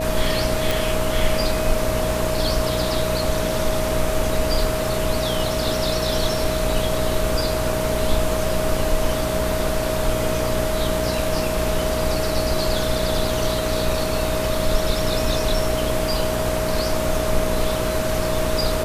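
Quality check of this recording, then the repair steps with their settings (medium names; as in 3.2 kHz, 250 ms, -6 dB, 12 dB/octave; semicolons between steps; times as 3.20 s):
buzz 60 Hz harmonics 11 -27 dBFS
whine 630 Hz -24 dBFS
0.71 s: pop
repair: de-click; de-hum 60 Hz, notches 11; band-stop 630 Hz, Q 30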